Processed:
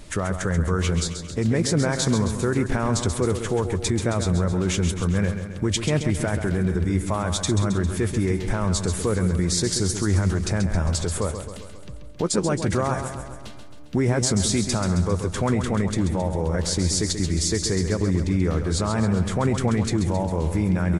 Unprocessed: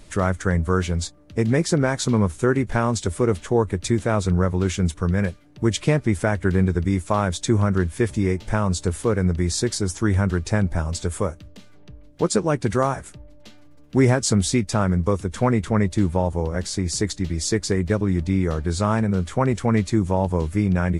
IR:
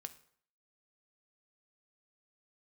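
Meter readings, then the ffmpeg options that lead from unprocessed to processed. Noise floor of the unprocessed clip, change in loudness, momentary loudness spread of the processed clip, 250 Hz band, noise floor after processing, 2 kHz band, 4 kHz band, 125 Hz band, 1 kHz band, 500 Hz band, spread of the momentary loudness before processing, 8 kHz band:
-46 dBFS, -1.0 dB, 5 LU, -1.5 dB, -37 dBFS, -2.0 dB, +3.0 dB, -1.0 dB, -3.5 dB, -2.5 dB, 5 LU, +2.5 dB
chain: -af "alimiter=limit=-16.5dB:level=0:latency=1,aecho=1:1:134|268|402|536|670|804|938:0.376|0.218|0.126|0.0733|0.0425|0.0247|0.0143,volume=3.5dB"

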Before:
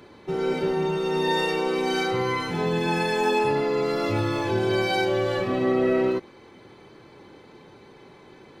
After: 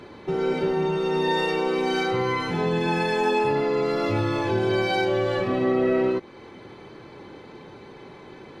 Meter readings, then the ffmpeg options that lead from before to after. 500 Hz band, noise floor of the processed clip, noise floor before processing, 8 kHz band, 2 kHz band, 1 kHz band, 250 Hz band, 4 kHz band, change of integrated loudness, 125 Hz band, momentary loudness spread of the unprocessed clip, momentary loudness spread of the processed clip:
+0.5 dB, -45 dBFS, -50 dBFS, n/a, 0.0 dB, +0.5 dB, +0.5 dB, -1.0 dB, +0.5 dB, +1.0 dB, 4 LU, 6 LU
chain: -filter_complex "[0:a]asplit=2[a][b];[b]acompressor=threshold=-33dB:ratio=6,volume=2.5dB[c];[a][c]amix=inputs=2:normalize=0,highshelf=f=7.3k:g=-10,volume=-2dB"

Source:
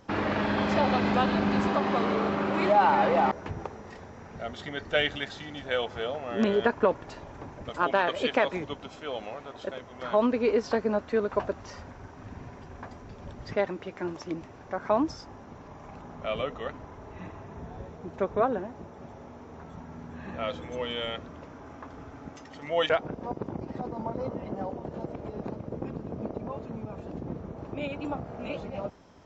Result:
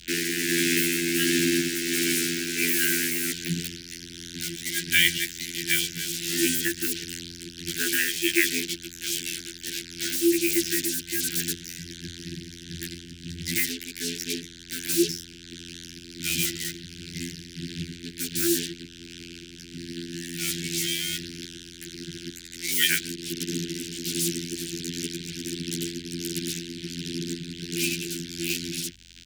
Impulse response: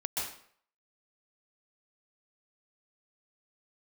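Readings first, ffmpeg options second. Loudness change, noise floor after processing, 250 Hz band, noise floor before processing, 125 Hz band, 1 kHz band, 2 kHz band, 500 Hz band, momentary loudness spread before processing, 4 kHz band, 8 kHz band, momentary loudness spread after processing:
+3.0 dB, -45 dBFS, +2.0 dB, -47 dBFS, +1.0 dB, under -25 dB, +6.0 dB, -6.5 dB, 20 LU, +11.0 dB, n/a, 17 LU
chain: -filter_complex "[0:a]equalizer=f=250:t=o:w=1:g=10,equalizer=f=500:t=o:w=1:g=10,equalizer=f=2k:t=o:w=1:g=11,equalizer=f=4k:t=o:w=1:g=-11,afftfilt=real='hypot(re,im)*cos(PI*b)':imag='0':win_size=2048:overlap=0.75,asplit=2[a][b];[b]aecho=0:1:125:0.075[c];[a][c]amix=inputs=2:normalize=0,asubboost=boost=5.5:cutoff=87,acrusher=bits=5:mix=0:aa=0.5,afreqshift=83,asuperstop=centerf=770:order=20:qfactor=0.68,tremolo=f=1.4:d=0.42,aeval=exprs='val(0)+0.00112*(sin(2*PI*50*n/s)+sin(2*PI*2*50*n/s)/2+sin(2*PI*3*50*n/s)/3+sin(2*PI*4*50*n/s)/4+sin(2*PI*5*50*n/s)/5)':c=same,aexciter=amount=2.7:drive=9.4:freq=2.7k,volume=2.5dB"

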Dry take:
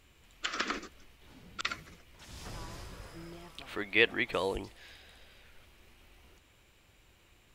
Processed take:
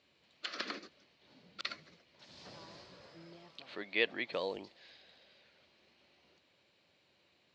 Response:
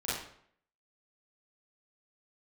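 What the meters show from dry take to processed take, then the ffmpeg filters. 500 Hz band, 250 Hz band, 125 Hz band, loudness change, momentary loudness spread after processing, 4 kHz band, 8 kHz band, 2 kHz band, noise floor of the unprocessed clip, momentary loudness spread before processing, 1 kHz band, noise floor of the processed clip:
-5.0 dB, -7.0 dB, -12.5 dB, -6.0 dB, 24 LU, -4.5 dB, under -10 dB, -7.0 dB, -64 dBFS, 22 LU, -8.0 dB, -72 dBFS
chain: -af "highpass=f=110:w=0.5412,highpass=f=110:w=1.3066,equalizer=f=110:t=q:w=4:g=-9,equalizer=f=580:t=q:w=4:g=6,equalizer=f=1.3k:t=q:w=4:g=-3,equalizer=f=4.3k:t=q:w=4:g=9,lowpass=f=5.7k:w=0.5412,lowpass=f=5.7k:w=1.3066,volume=-7dB"

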